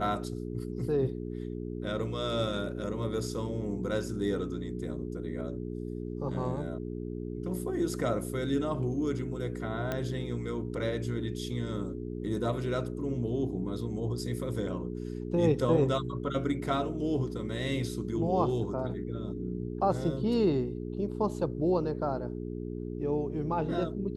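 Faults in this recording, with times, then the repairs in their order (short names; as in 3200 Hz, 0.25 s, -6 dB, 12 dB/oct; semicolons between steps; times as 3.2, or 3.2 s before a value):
hum 60 Hz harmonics 7 -37 dBFS
9.92 pop -18 dBFS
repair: de-click; de-hum 60 Hz, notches 7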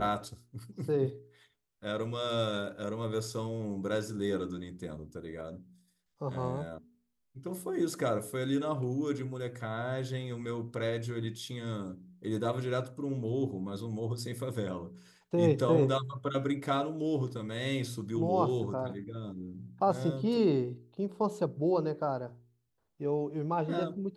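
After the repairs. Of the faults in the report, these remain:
none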